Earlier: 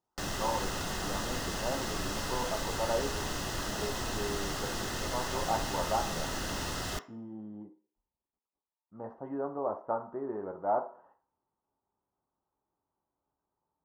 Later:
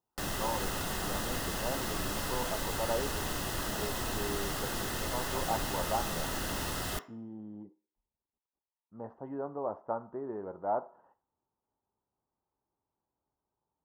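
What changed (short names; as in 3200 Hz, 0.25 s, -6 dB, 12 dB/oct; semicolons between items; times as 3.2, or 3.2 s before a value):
speech: send -8.5 dB; master: add EQ curve 3400 Hz 0 dB, 6100 Hz -3 dB, 11000 Hz +7 dB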